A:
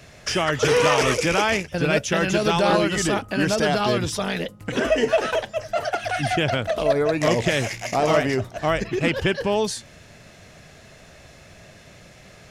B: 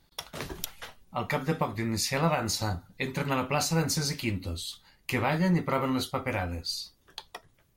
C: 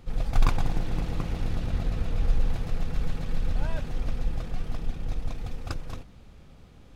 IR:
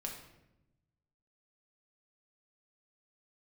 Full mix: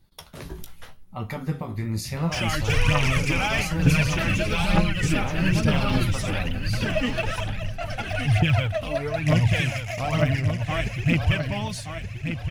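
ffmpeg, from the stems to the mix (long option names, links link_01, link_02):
-filter_complex "[0:a]equalizer=frequency=100:width_type=o:width=0.67:gain=12,equalizer=frequency=400:width_type=o:width=0.67:gain=-11,equalizer=frequency=2500:width_type=o:width=0.67:gain=9,aphaser=in_gain=1:out_gain=1:delay=4:decay=0.62:speed=1.1:type=triangular,adelay=2050,volume=-10dB,asplit=2[link_01][link_02];[link_02]volume=-8dB[link_03];[1:a]alimiter=limit=-20dB:level=0:latency=1:release=66,flanger=delay=9.1:depth=10:regen=44:speed=0.81:shape=sinusoidal,volume=-1dB,asplit=2[link_04][link_05];[link_05]volume=-17dB[link_06];[2:a]adelay=2400,volume=-15.5dB[link_07];[3:a]atrim=start_sample=2205[link_08];[link_06][link_08]afir=irnorm=-1:irlink=0[link_09];[link_03]aecho=0:1:1175|2350|3525|4700:1|0.27|0.0729|0.0197[link_10];[link_01][link_04][link_07][link_09][link_10]amix=inputs=5:normalize=0,lowshelf=frequency=250:gain=11.5,aexciter=amount=2:drive=1.3:freq=10000"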